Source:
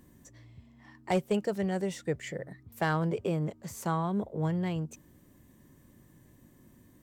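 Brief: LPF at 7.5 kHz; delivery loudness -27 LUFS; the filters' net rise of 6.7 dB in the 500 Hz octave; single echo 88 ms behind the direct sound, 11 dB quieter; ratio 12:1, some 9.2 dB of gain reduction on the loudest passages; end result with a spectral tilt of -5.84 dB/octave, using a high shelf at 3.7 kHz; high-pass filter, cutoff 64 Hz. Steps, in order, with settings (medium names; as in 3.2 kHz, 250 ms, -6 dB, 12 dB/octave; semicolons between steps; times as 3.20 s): high-pass 64 Hz; low-pass 7.5 kHz; peaking EQ 500 Hz +8 dB; treble shelf 3.7 kHz +9 dB; compression 12:1, threshold -27 dBFS; delay 88 ms -11 dB; trim +6 dB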